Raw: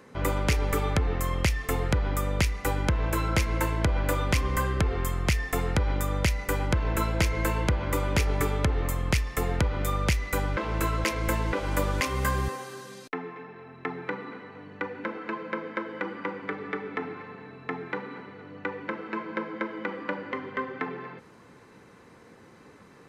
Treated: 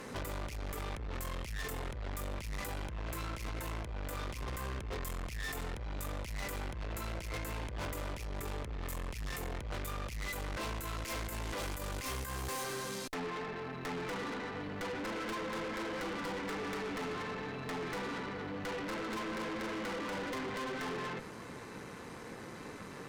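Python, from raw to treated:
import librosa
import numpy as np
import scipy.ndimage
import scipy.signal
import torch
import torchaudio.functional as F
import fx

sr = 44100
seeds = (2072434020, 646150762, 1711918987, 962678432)

y = fx.high_shelf(x, sr, hz=4000.0, db=fx.steps((0.0, 7.0), (10.51, 12.0), (12.62, 3.5)))
y = fx.over_compress(y, sr, threshold_db=-30.0, ratio=-0.5)
y = fx.tube_stage(y, sr, drive_db=42.0, bias=0.7)
y = F.gain(torch.from_numpy(y), 5.0).numpy()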